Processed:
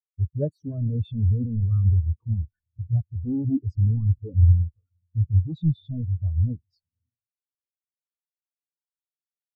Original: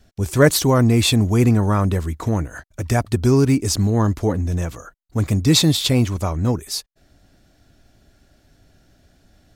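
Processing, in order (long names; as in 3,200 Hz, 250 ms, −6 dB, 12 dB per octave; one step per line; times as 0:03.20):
in parallel at −11.5 dB: sine wavefolder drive 15 dB, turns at −2.5 dBFS
on the sum: feedback delay with all-pass diffusion 525 ms, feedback 40%, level −14 dB
every bin expanded away from the loudest bin 4 to 1
level −7 dB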